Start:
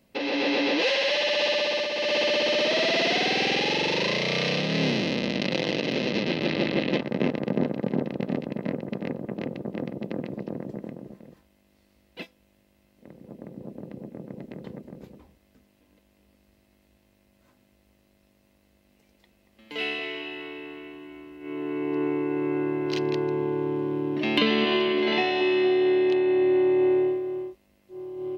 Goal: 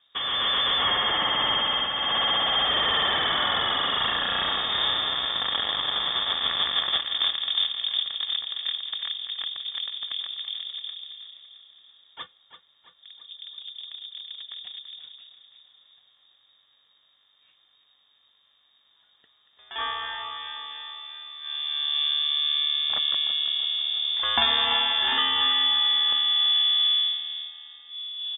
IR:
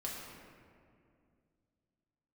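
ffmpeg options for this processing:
-filter_complex "[0:a]acrossover=split=130[link_01][link_02];[link_01]aeval=exprs='(mod(211*val(0)+1,2)-1)/211':channel_layout=same[link_03];[link_03][link_02]amix=inputs=2:normalize=0,aecho=1:1:334|668|1002|1336|1670|2004:0.266|0.149|0.0834|0.0467|0.0262|0.0147,lowpass=frequency=3200:width_type=q:width=0.5098,lowpass=frequency=3200:width_type=q:width=0.6013,lowpass=frequency=3200:width_type=q:width=0.9,lowpass=frequency=3200:width_type=q:width=2.563,afreqshift=-3800,highpass=43,lowshelf=frequency=340:gain=7"

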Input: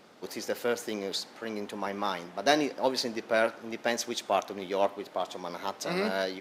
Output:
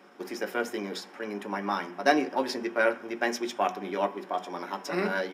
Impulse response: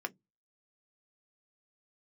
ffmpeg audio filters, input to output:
-filter_complex "[0:a]atempo=1.2,bandreject=frequency=123:width_type=h:width=4,bandreject=frequency=246:width_type=h:width=4,bandreject=frequency=369:width_type=h:width=4,bandreject=frequency=492:width_type=h:width=4,bandreject=frequency=615:width_type=h:width=4,bandreject=frequency=738:width_type=h:width=4,bandreject=frequency=861:width_type=h:width=4,bandreject=frequency=984:width_type=h:width=4,bandreject=frequency=1107:width_type=h:width=4,bandreject=frequency=1230:width_type=h:width=4,bandreject=frequency=1353:width_type=h:width=4,bandreject=frequency=1476:width_type=h:width=4,bandreject=frequency=1599:width_type=h:width=4,bandreject=frequency=1722:width_type=h:width=4,bandreject=frequency=1845:width_type=h:width=4,bandreject=frequency=1968:width_type=h:width=4,bandreject=frequency=2091:width_type=h:width=4,bandreject=frequency=2214:width_type=h:width=4,bandreject=frequency=2337:width_type=h:width=4,bandreject=frequency=2460:width_type=h:width=4,bandreject=frequency=2583:width_type=h:width=4,bandreject=frequency=2706:width_type=h:width=4,bandreject=frequency=2829:width_type=h:width=4,bandreject=frequency=2952:width_type=h:width=4,bandreject=frequency=3075:width_type=h:width=4,bandreject=frequency=3198:width_type=h:width=4,bandreject=frequency=3321:width_type=h:width=4,bandreject=frequency=3444:width_type=h:width=4[link_01];[1:a]atrim=start_sample=2205[link_02];[link_01][link_02]afir=irnorm=-1:irlink=0"

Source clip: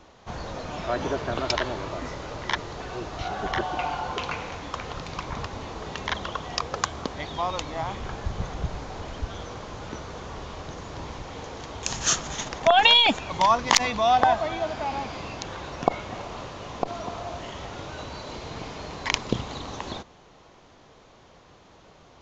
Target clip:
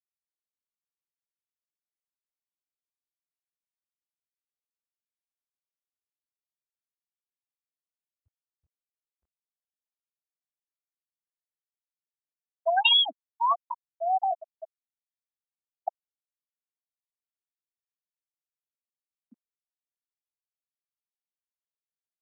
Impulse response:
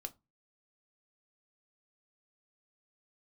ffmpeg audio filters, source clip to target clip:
-af "afftfilt=real='re*gte(hypot(re,im),0.708)':imag='im*gte(hypot(re,im),0.708)':win_size=1024:overlap=0.75,highpass=800,volume=-1.5dB"

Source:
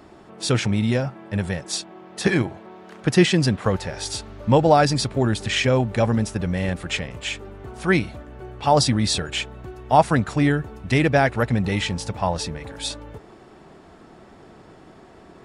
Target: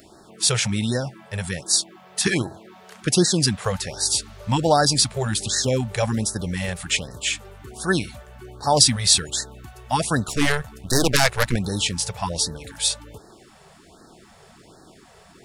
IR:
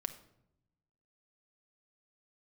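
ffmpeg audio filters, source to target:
-filter_complex "[0:a]asettb=1/sr,asplit=3[link_01][link_02][link_03];[link_01]atrim=end=10.284[link_04];[link_02]atrim=start=10.28:end=11.56,asetpts=PTS-STARTPTS,afade=type=in:duration=0.004:curve=qsin,afade=type=out:start_time=1.276:duration=0.004:curve=qsin,aeval=exprs='0.473*(cos(1*acos(clip(val(0)/0.473,-1,1)))-cos(1*PI/2))+0.119*(cos(6*acos(clip(val(0)/0.473,-1,1)))-cos(6*PI/2))':channel_layout=same[link_05];[link_03]atrim=start=11.556[link_06];[link_04][link_05]acrossfade=duration=0.004:curve1=hsin:curve2=qsin[link_07];[link_07][link_06]acrossfade=duration=0.004:curve1=qsin:curve2=hsin,crystalizer=i=4:c=0,afftfilt=real='re*(1-between(b*sr/1024,250*pow(2700/250,0.5+0.5*sin(2*PI*1.3*pts/sr))/1.41,250*pow(2700/250,0.5+0.5*sin(2*PI*1.3*pts/sr))*1.41))':imag='im*(1-between(b*sr/1024,250*pow(2700/250,0.5+0.5*sin(2*PI*1.3*pts/sr))/1.41,250*pow(2700/250,0.5+0.5*sin(2*PI*1.3*pts/sr))*1.41))':win_size=1024:overlap=0.75,volume=-3dB"

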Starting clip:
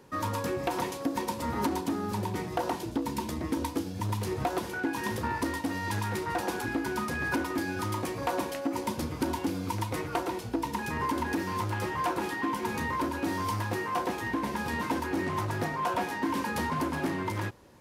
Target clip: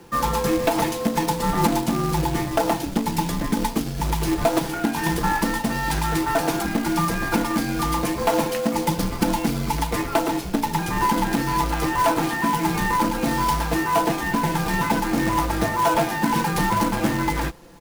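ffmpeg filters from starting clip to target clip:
ffmpeg -i in.wav -af "afreqshift=-48,aecho=1:1:5.9:0.5,acrusher=bits=3:mode=log:mix=0:aa=0.000001,volume=8dB" out.wav

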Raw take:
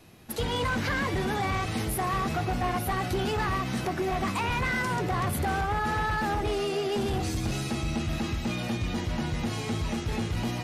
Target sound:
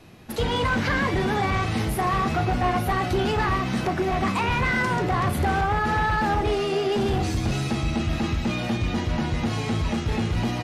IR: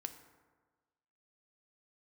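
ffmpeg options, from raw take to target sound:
-filter_complex "[0:a]highshelf=frequency=7600:gain=-11,asplit=2[link_01][link_02];[link_02]adelay=36,volume=-12dB[link_03];[link_01][link_03]amix=inputs=2:normalize=0,volume=5dB"

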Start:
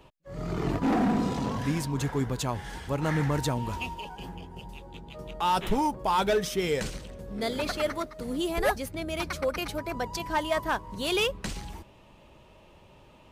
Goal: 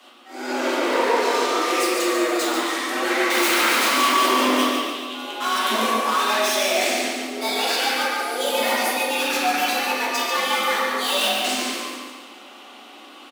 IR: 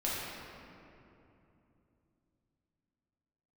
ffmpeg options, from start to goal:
-filter_complex "[0:a]asettb=1/sr,asplit=3[link_01][link_02][link_03];[link_01]atrim=end=3.304[link_04];[link_02]atrim=start=3.3:end=4.64,asetpts=PTS-STARTPTS,afade=type=in:duration=0.004:curve=qsin,afade=type=out:start_time=1.336:duration=0.004:curve=qsin,aeval=exprs='0.119*sin(PI/2*7.08*val(0)/0.119)':channel_layout=same[link_05];[link_03]atrim=start=4.636[link_06];[link_04][link_05]acrossfade=duration=0.004:curve1=hsin:curve2=qsin[link_07];[link_07][link_06]acrossfade=duration=0.004:curve1=qsin:curve2=hsin,tiltshelf=frequency=870:gain=-8,volume=30.5dB,asoftclip=hard,volume=-30.5dB,afreqshift=210,aecho=1:1:142|284|426|568|710|852:0.531|0.265|0.133|0.0664|0.0332|0.0166[link_08];[1:a]atrim=start_sample=2205,afade=type=out:start_time=0.34:duration=0.01,atrim=end_sample=15435[link_09];[link_08][link_09]afir=irnorm=-1:irlink=0,volume=5.5dB"

